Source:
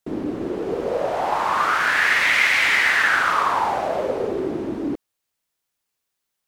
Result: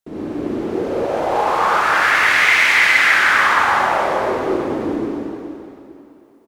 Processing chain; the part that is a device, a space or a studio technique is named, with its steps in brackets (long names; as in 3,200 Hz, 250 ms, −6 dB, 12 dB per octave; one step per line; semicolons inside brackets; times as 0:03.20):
cave (single-tap delay 314 ms −10.5 dB; convolution reverb RT60 2.8 s, pre-delay 45 ms, DRR −7.5 dB)
level −4 dB